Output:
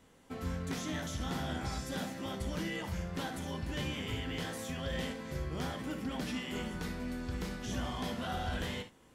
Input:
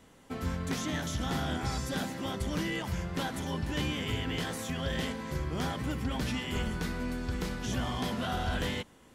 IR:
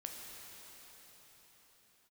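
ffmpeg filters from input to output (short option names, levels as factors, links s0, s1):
-filter_complex "[0:a]asettb=1/sr,asplit=3[s0][s1][s2];[s0]atrim=end=5.764[s3];[s1]atrim=start=5.76:end=6.75,asetpts=PTS-STARTPTS,afade=t=in:d=0.004:c=qsin,afade=t=out:st=0.986:d=0.004:c=qsin,lowshelf=f=140:t=q:w=1.5:g=-7.5[s4];[s2]atrim=start=6.746[s5];[s3][s4]acrossfade=d=0.004:c1=hsin:c2=qsin[s6];[s6][s5]acrossfade=d=0.004:c1=qsin:c2=hsin[s7];[1:a]atrim=start_sample=2205,atrim=end_sample=3528[s8];[s7][s8]afir=irnorm=-1:irlink=0"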